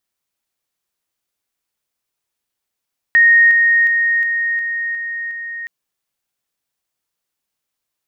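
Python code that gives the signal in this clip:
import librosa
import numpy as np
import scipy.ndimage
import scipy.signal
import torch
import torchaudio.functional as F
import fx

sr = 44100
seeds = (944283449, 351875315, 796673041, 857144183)

y = fx.level_ladder(sr, hz=1860.0, from_db=-6.5, step_db=-3.0, steps=7, dwell_s=0.36, gap_s=0.0)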